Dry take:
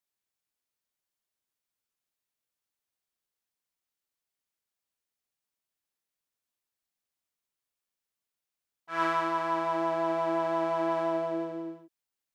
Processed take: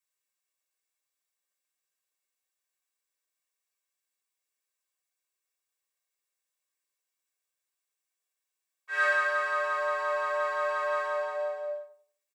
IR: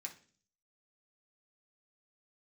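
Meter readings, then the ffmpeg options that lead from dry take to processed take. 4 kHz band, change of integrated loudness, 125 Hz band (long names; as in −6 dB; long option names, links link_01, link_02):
+0.5 dB, +1.0 dB, below −40 dB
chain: -filter_complex "[0:a]afreqshift=260,aecho=1:1:1.8:0.53,asplit=2[link_01][link_02];[link_02]adelay=93,lowpass=frequency=910:poles=1,volume=-7.5dB,asplit=2[link_03][link_04];[link_04]adelay=93,lowpass=frequency=910:poles=1,volume=0.34,asplit=2[link_05][link_06];[link_06]adelay=93,lowpass=frequency=910:poles=1,volume=0.34,asplit=2[link_07][link_08];[link_08]adelay=93,lowpass=frequency=910:poles=1,volume=0.34[link_09];[link_01][link_03][link_05][link_07][link_09]amix=inputs=5:normalize=0,acontrast=75[link_10];[1:a]atrim=start_sample=2205,atrim=end_sample=3528[link_11];[link_10][link_11]afir=irnorm=-1:irlink=0,volume=-2.5dB"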